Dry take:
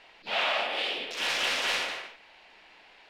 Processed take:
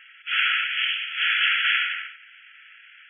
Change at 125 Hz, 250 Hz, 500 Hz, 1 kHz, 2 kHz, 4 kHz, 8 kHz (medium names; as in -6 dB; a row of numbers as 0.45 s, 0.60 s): no reading, under -40 dB, under -40 dB, +0.5 dB, +9.0 dB, +5.5 dB, under -40 dB